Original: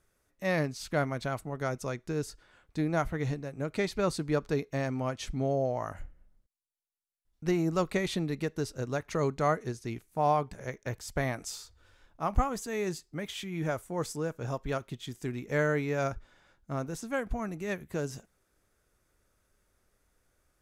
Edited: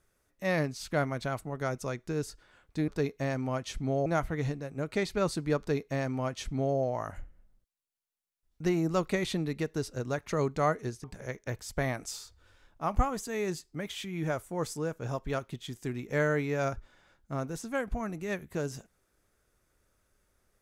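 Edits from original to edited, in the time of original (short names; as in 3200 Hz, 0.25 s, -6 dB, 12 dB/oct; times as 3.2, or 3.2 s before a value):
4.41–5.59 copy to 2.88
9.86–10.43 cut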